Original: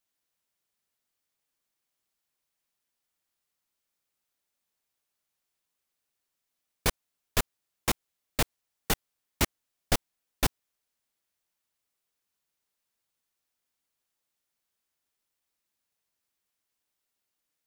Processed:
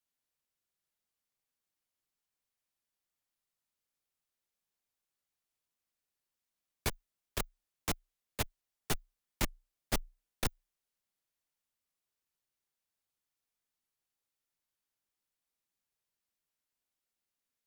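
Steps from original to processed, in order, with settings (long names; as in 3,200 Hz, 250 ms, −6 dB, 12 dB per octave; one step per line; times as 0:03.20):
low-shelf EQ 200 Hz +4 dB
tube saturation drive 18 dB, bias 0.55
frequency shifter −31 Hz
level −4 dB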